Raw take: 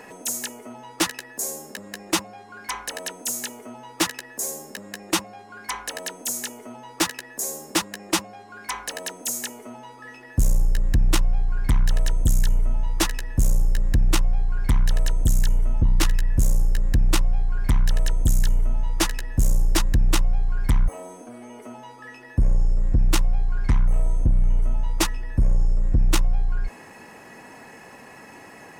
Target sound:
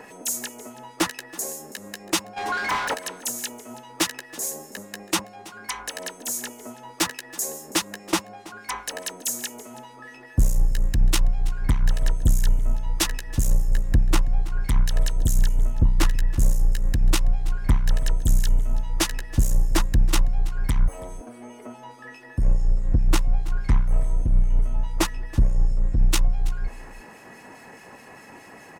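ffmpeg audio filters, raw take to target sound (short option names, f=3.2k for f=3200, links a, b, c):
-filter_complex "[0:a]asplit=3[a][b][c];[a]afade=t=out:st=2.36:d=0.02[d];[b]asplit=2[e][f];[f]highpass=f=720:p=1,volume=31dB,asoftclip=type=tanh:threshold=-16dB[g];[e][g]amix=inputs=2:normalize=0,lowpass=f=3k:p=1,volume=-6dB,afade=t=in:st=2.36:d=0.02,afade=t=out:st=2.93:d=0.02[h];[c]afade=t=in:st=2.93:d=0.02[i];[d][h][i]amix=inputs=3:normalize=0,acrossover=split=2000[j][k];[j]aeval=exprs='val(0)*(1-0.5/2+0.5/2*cos(2*PI*4.8*n/s))':c=same[l];[k]aeval=exprs='val(0)*(1-0.5/2-0.5/2*cos(2*PI*4.8*n/s))':c=same[m];[l][m]amix=inputs=2:normalize=0,aecho=1:1:327:0.106,volume=1.5dB"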